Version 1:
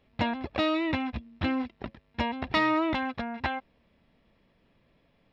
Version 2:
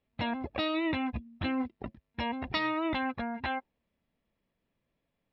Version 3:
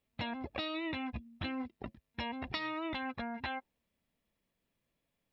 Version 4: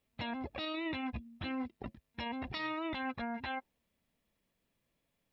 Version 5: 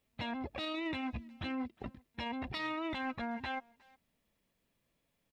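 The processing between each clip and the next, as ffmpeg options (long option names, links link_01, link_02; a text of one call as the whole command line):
ffmpeg -i in.wav -filter_complex "[0:a]afftdn=noise_reduction=15:noise_floor=-41,acrossover=split=2800[link_01][link_02];[link_01]alimiter=level_in=0.5dB:limit=-24dB:level=0:latency=1:release=28,volume=-0.5dB[link_03];[link_03][link_02]amix=inputs=2:normalize=0" out.wav
ffmpeg -i in.wav -af "highshelf=frequency=3100:gain=8.5,acompressor=threshold=-31dB:ratio=6,volume=-3.5dB" out.wav
ffmpeg -i in.wav -af "alimiter=level_in=8.5dB:limit=-24dB:level=0:latency=1:release=11,volume=-8.5dB,volume=2dB" out.wav
ffmpeg -i in.wav -filter_complex "[0:a]asplit=2[link_01][link_02];[link_02]asoftclip=type=tanh:threshold=-39.5dB,volume=-8dB[link_03];[link_01][link_03]amix=inputs=2:normalize=0,asplit=2[link_04][link_05];[link_05]adelay=360,highpass=300,lowpass=3400,asoftclip=type=hard:threshold=-37.5dB,volume=-22dB[link_06];[link_04][link_06]amix=inputs=2:normalize=0,volume=-1.5dB" out.wav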